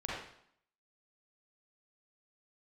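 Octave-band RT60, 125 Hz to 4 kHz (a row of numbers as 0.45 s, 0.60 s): 0.60 s, 0.70 s, 0.65 s, 0.70 s, 0.65 s, 0.60 s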